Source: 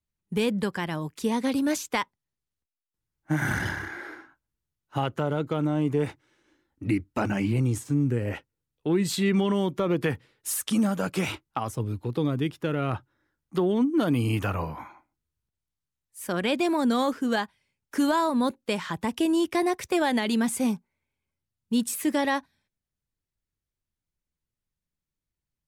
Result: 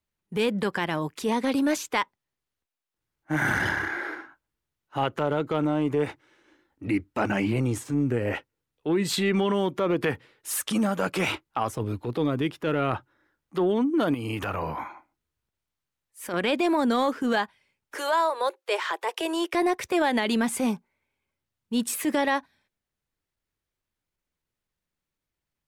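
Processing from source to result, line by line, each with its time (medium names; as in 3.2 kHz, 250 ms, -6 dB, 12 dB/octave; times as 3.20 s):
14.14–16.34 s: compression, threshold -29 dBFS
17.96–19.54 s: steep high-pass 360 Hz 72 dB/octave
whole clip: tone controls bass -8 dB, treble -6 dB; transient shaper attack -7 dB, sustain -1 dB; compression 2.5:1, threshold -29 dBFS; trim +7.5 dB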